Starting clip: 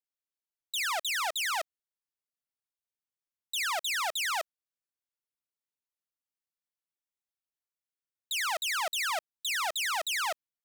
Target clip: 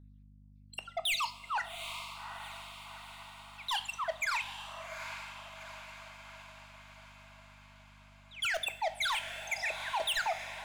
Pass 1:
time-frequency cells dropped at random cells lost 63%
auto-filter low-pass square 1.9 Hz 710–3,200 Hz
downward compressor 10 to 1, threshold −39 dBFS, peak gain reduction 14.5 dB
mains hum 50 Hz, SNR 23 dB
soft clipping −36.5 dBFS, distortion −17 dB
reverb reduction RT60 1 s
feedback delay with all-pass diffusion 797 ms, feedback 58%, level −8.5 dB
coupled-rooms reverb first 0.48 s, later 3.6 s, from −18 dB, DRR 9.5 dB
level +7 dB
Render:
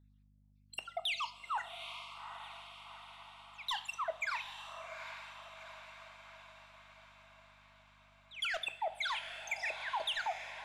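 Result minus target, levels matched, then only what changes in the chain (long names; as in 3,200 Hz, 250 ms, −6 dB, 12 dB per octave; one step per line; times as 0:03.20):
downward compressor: peak gain reduction +14.5 dB
remove: downward compressor 10 to 1, threshold −39 dBFS, peak gain reduction 14.5 dB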